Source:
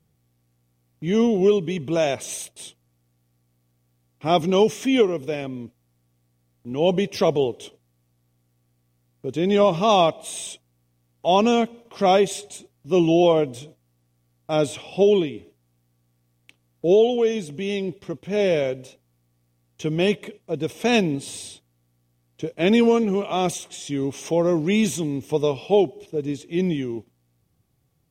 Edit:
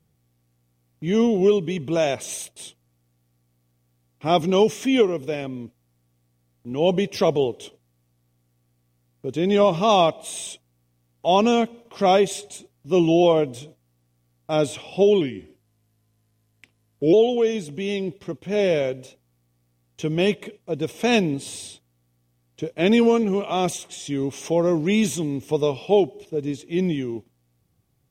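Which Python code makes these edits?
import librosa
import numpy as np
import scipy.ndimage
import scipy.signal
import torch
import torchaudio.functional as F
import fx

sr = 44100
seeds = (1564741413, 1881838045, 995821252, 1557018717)

y = fx.edit(x, sr, fx.speed_span(start_s=15.21, length_s=1.73, speed=0.9), tone=tone)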